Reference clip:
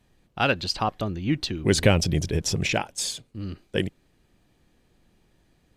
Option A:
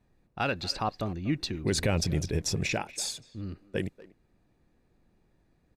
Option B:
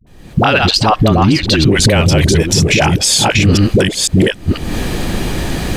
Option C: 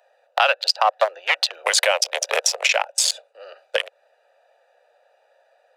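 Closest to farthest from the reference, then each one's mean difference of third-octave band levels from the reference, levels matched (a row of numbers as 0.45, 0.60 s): A, B, C; 2.0, 10.0, 14.5 dB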